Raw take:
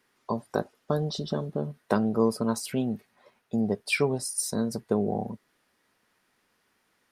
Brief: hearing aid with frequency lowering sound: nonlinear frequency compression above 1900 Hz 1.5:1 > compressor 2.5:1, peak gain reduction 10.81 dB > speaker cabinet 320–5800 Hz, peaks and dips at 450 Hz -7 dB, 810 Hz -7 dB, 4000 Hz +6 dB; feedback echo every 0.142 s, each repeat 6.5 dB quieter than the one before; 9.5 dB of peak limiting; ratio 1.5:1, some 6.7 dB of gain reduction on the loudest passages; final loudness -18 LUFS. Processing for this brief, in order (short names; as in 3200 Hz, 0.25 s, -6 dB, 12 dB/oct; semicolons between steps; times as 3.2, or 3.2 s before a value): compressor 1.5:1, threshold -37 dBFS; limiter -22.5 dBFS; feedback echo 0.142 s, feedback 47%, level -6.5 dB; nonlinear frequency compression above 1900 Hz 1.5:1; compressor 2.5:1, threshold -43 dBFS; speaker cabinet 320–5800 Hz, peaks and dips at 450 Hz -7 dB, 810 Hz -7 dB, 4000 Hz +6 dB; gain +29 dB